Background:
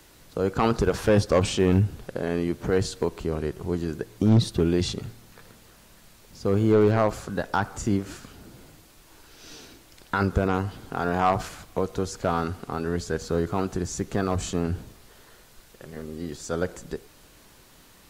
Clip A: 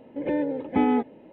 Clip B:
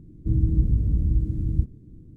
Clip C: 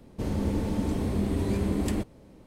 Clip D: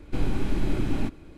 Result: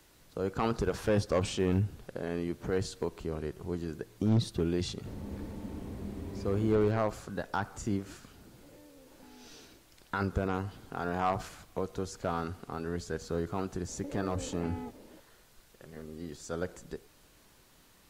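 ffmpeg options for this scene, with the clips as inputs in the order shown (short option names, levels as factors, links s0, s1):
-filter_complex "[1:a]asplit=2[s0][s1];[0:a]volume=0.398[s2];[3:a]acrossover=split=3000[s3][s4];[s4]acompressor=threshold=0.00178:ratio=4:attack=1:release=60[s5];[s3][s5]amix=inputs=2:normalize=0[s6];[s0]acompressor=threshold=0.0158:ratio=6:attack=3.2:release=140:knee=1:detection=peak[s7];[s1]acompressor=threshold=0.0224:ratio=6:attack=3.2:release=140:knee=1:detection=peak[s8];[s6]atrim=end=2.46,asetpts=PTS-STARTPTS,volume=0.224,afade=t=in:d=0.004:c=hsin,afade=t=out:st=2.456:d=0.004:c=hsin,adelay=4860[s9];[s7]atrim=end=1.32,asetpts=PTS-STARTPTS,volume=0.133,afade=t=in:d=0.004:c=hsin,afade=t=out:st=1.316:d=0.004:c=hsin,adelay=8470[s10];[s8]atrim=end=1.32,asetpts=PTS-STARTPTS,volume=0.562,afade=t=in:d=0.004:c=hsin,afade=t=out:st=1.316:d=0.004:c=hsin,adelay=13880[s11];[s2][s9][s10][s11]amix=inputs=4:normalize=0"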